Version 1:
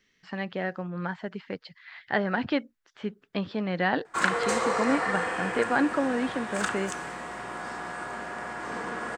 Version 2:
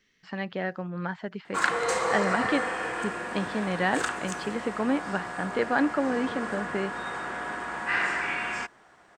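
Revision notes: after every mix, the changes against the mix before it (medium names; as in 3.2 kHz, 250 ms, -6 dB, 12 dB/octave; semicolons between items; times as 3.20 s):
background: entry -2.60 s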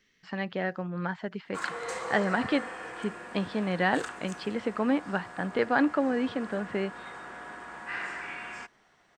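background -9.0 dB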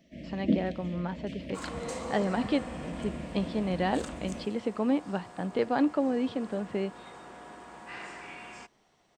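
first sound: unmuted; master: add peaking EQ 1.6 kHz -11 dB 1 oct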